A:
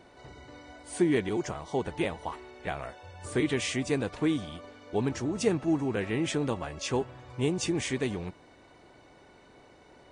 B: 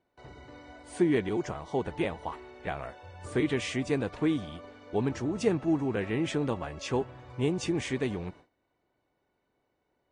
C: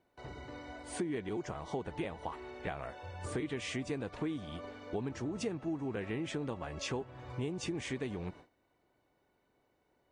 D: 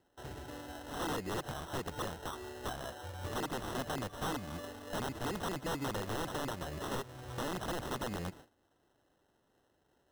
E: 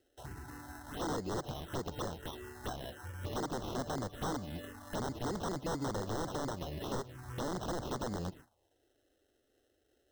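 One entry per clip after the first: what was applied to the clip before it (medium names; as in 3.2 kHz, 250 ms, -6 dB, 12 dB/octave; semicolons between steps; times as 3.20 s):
gate with hold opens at -42 dBFS; treble shelf 4.8 kHz -9 dB
compression 4:1, threshold -38 dBFS, peak gain reduction 15 dB; trim +2 dB
sample-and-hold 19×; integer overflow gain 32.5 dB; endings held to a fixed fall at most 490 dB/s; trim +1 dB
touch-sensitive phaser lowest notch 160 Hz, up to 2.6 kHz, full sweep at -35 dBFS; trim +1.5 dB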